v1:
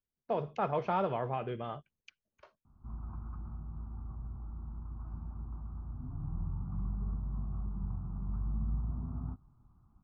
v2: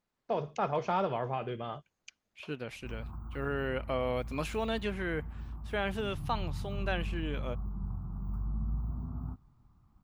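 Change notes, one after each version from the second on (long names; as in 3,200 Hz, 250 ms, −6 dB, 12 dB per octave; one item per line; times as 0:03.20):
second voice: unmuted
master: remove high-frequency loss of the air 210 metres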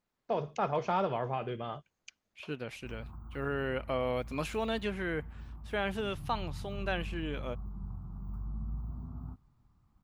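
background −4.0 dB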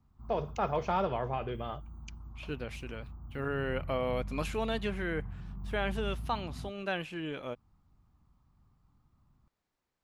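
background: entry −2.65 s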